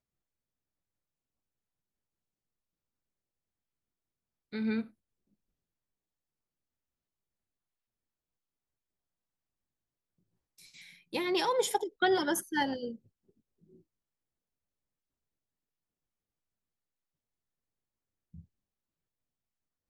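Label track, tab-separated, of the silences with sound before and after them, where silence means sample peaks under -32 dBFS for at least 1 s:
4.810000	11.140000	silence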